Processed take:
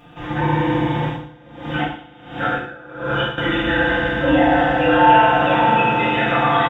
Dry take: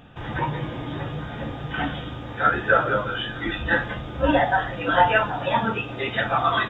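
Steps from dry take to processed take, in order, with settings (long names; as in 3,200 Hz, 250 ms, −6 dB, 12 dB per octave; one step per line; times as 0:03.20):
low-shelf EQ 200 Hz −4 dB
comb filter 5.8 ms, depth 57%
brickwall limiter −14.5 dBFS, peak gain reduction 11.5 dB
feedback delay network reverb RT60 3.2 s, low-frequency decay 1.25×, high-frequency decay 0.95×, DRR −8 dB
0:01.05–0:03.38: tremolo with a sine in dB 1.4 Hz, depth 23 dB
level −1 dB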